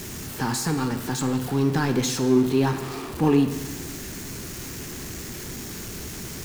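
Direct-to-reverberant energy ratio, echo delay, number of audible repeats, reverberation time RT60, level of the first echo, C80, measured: 7.5 dB, no echo audible, no echo audible, 1.2 s, no echo audible, 11.0 dB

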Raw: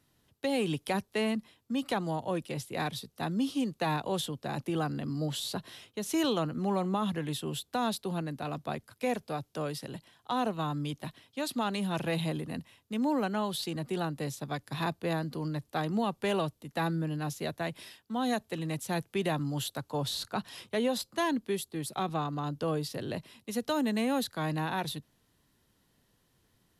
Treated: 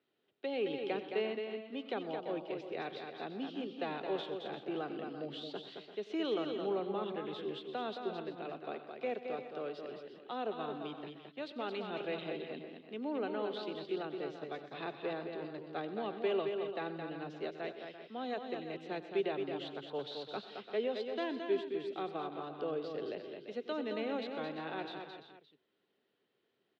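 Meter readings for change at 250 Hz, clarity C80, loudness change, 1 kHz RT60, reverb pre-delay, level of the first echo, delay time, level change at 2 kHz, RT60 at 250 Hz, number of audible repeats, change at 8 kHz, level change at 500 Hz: −9.0 dB, no reverb audible, −6.5 dB, no reverb audible, no reverb audible, −17.5 dB, 93 ms, −7.0 dB, no reverb audible, 6, below −30 dB, −2.0 dB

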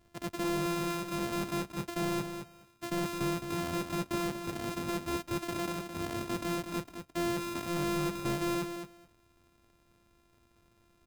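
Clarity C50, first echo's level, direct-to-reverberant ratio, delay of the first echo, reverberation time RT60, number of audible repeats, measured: no reverb audible, −8.0 dB, no reverb audible, 214 ms, no reverb audible, 2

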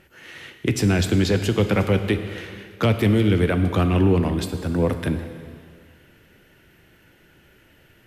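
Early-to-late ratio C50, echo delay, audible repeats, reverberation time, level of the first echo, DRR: 9.0 dB, no echo audible, no echo audible, 2.1 s, no echo audible, 7.5 dB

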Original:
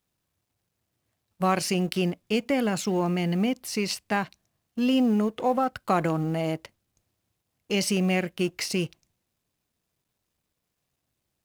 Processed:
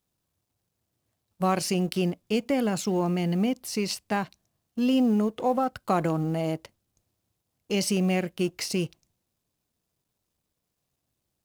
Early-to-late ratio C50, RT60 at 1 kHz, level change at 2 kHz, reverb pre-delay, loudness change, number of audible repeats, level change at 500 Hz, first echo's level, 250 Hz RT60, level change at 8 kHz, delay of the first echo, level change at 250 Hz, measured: no reverb audible, no reverb audible, −4.0 dB, no reverb audible, −0.5 dB, no echo audible, −0.5 dB, no echo audible, no reverb audible, −0.5 dB, no echo audible, 0.0 dB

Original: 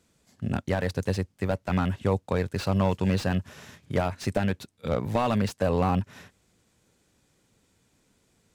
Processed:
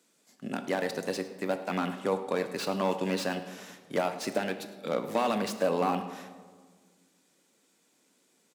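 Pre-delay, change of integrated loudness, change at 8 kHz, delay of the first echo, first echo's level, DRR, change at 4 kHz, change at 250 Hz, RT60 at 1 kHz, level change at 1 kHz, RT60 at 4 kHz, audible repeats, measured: 3 ms, −3.5 dB, +2.0 dB, 106 ms, −18.5 dB, 7.5 dB, +0.5 dB, −5.5 dB, 1.5 s, −1.0 dB, 0.95 s, 1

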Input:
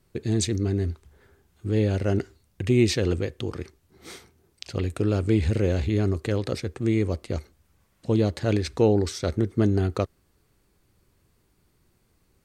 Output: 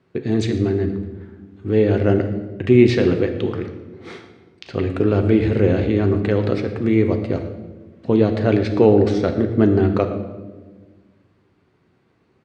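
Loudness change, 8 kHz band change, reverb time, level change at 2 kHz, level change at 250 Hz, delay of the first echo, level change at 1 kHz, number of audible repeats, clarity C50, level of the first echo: +7.0 dB, can't be measured, 1.3 s, +6.5 dB, +8.0 dB, 117 ms, +8.0 dB, 1, 8.5 dB, −17.0 dB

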